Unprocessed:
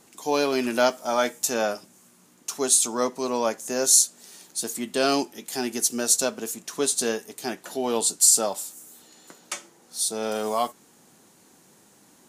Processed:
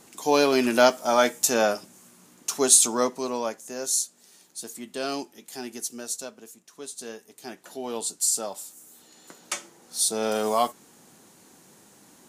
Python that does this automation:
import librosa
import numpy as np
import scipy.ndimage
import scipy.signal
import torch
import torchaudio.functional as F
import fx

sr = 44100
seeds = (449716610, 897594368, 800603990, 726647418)

y = fx.gain(x, sr, db=fx.line((2.86, 3.0), (3.71, -8.0), (5.72, -8.0), (6.7, -16.5), (7.66, -7.0), (8.44, -7.0), (9.54, 2.0)))